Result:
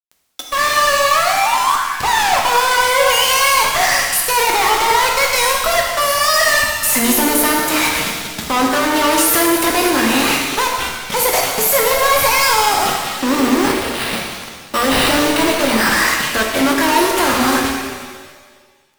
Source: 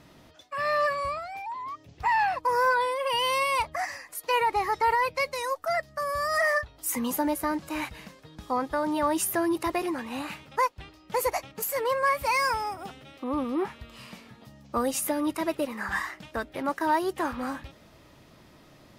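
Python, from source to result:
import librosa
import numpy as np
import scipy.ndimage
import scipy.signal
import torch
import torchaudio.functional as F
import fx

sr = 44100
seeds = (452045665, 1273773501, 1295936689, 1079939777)

y = fx.highpass(x, sr, hz=160.0, slope=6)
y = fx.high_shelf(y, sr, hz=2200.0, db=8.5)
y = fx.fuzz(y, sr, gain_db=46.0, gate_db=-42.0)
y = fx.sample_hold(y, sr, seeds[0], rate_hz=6700.0, jitter_pct=0, at=(13.28, 15.9))
y = fx.rev_shimmer(y, sr, seeds[1], rt60_s=1.5, semitones=7, shimmer_db=-8, drr_db=0.0)
y = y * 10.0 ** (-2.5 / 20.0)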